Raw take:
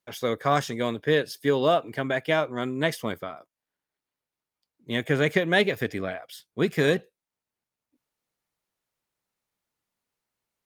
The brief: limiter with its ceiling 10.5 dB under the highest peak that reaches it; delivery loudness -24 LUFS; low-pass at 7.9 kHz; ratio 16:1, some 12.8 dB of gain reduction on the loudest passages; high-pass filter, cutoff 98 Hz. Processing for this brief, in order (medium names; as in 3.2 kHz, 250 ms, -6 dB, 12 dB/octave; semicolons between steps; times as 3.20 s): high-pass 98 Hz; low-pass 7.9 kHz; compression 16:1, threshold -29 dBFS; trim +16 dB; peak limiter -12.5 dBFS